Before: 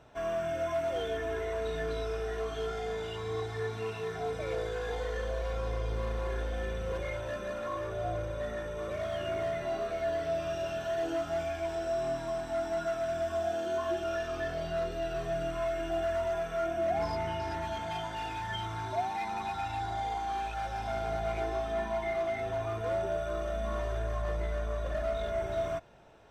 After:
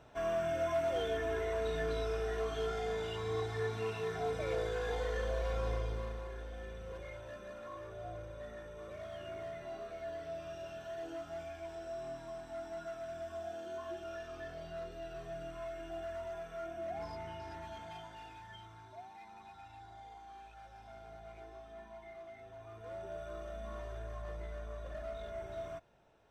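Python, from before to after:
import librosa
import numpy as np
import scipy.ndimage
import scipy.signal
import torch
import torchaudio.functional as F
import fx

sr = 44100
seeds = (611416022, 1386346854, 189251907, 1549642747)

y = fx.gain(x, sr, db=fx.line((5.72, -1.5), (6.31, -11.0), (17.82, -11.0), (18.9, -18.5), (22.54, -18.5), (23.22, -10.5)))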